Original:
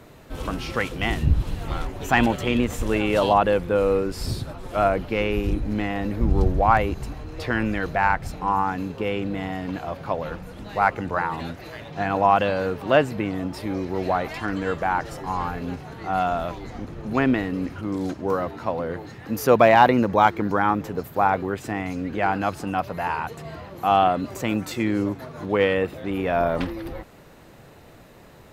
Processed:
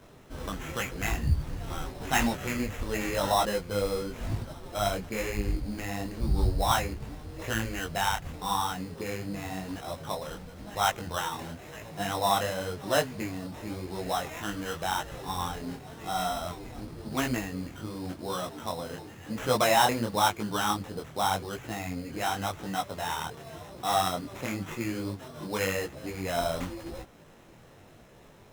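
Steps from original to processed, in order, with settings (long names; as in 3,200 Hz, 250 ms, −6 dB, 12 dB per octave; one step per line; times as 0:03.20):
dynamic equaliser 340 Hz, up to −5 dB, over −30 dBFS, Q 0.71
sample-rate reduction 4,600 Hz, jitter 0%
micro pitch shift up and down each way 32 cents
level −2 dB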